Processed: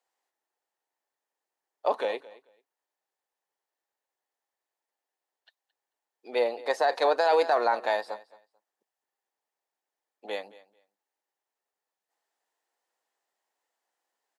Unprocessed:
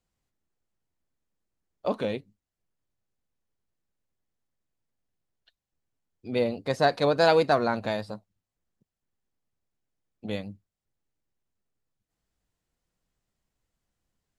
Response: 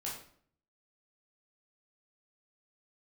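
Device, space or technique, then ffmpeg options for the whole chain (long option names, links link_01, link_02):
laptop speaker: -af "highpass=frequency=390:width=0.5412,highpass=frequency=390:width=1.3066,equalizer=frequency=850:width_type=o:width=0.56:gain=9.5,equalizer=frequency=1800:width_type=o:width=0.2:gain=7,aecho=1:1:220|440:0.1|0.018,alimiter=limit=-14dB:level=0:latency=1:release=11"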